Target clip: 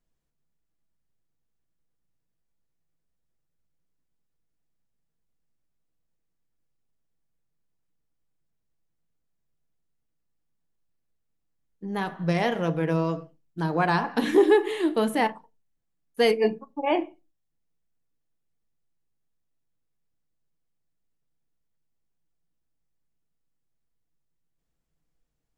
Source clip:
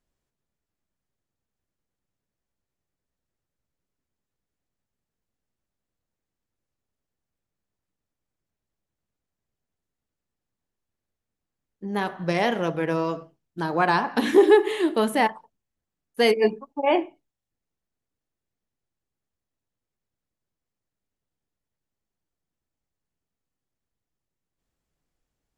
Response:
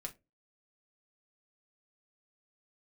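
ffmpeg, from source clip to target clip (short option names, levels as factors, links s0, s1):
-filter_complex "[0:a]asplit=2[s0][s1];[1:a]atrim=start_sample=2205,lowshelf=f=320:g=9.5[s2];[s1][s2]afir=irnorm=-1:irlink=0,volume=0.668[s3];[s0][s3]amix=inputs=2:normalize=0,volume=0.501"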